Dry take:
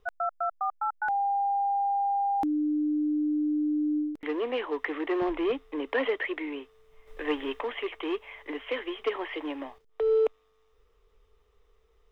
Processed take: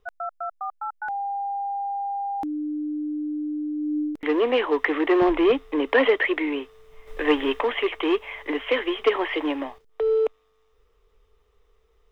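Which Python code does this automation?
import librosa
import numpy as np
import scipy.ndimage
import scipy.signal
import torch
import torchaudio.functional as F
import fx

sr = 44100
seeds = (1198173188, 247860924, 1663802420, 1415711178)

y = fx.gain(x, sr, db=fx.line((3.75, -1.5), (4.34, 9.0), (9.48, 9.0), (10.16, 2.0)))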